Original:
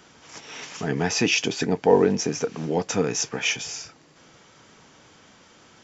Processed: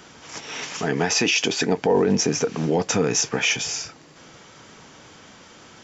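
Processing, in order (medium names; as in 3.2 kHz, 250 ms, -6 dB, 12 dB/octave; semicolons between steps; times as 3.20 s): 0.80–1.78 s: bass shelf 190 Hz -9.5 dB; peak limiter -16.5 dBFS, peak gain reduction 11.5 dB; trim +6 dB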